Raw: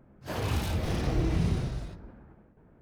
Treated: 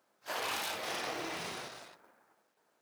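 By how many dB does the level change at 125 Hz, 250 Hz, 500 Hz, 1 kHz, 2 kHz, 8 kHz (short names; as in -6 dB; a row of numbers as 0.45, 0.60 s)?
-29.0, -16.0, -6.0, +0.5, +2.5, +2.5 dB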